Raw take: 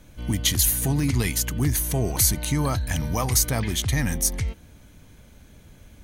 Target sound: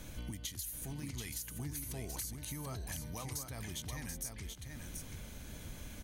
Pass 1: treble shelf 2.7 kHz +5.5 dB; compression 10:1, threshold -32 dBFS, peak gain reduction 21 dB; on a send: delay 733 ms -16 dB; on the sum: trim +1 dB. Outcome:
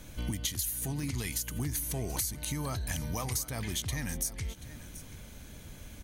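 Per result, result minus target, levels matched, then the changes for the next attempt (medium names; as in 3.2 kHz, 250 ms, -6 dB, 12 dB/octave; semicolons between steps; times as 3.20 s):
compression: peak gain reduction -9 dB; echo-to-direct -10.5 dB
change: compression 10:1, threshold -42 dBFS, peak gain reduction 30 dB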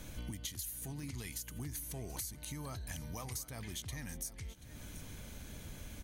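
echo-to-direct -10.5 dB
change: delay 733 ms -5.5 dB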